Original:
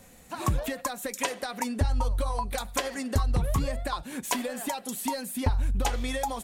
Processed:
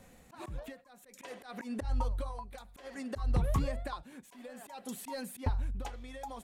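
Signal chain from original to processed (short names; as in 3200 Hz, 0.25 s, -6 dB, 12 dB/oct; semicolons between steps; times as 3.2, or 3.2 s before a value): high shelf 4400 Hz -8 dB; auto swell 0.126 s; tremolo 0.58 Hz, depth 77%; gain -3 dB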